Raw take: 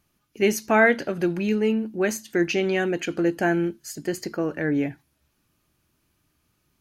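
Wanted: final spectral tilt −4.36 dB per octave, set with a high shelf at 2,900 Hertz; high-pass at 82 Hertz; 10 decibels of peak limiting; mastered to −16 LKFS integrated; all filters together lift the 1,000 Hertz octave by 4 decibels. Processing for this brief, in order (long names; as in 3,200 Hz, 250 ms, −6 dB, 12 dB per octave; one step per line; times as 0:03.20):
high-pass filter 82 Hz
parametric band 1,000 Hz +5 dB
high-shelf EQ 2,900 Hz +5 dB
level +8.5 dB
brickwall limiter −3.5 dBFS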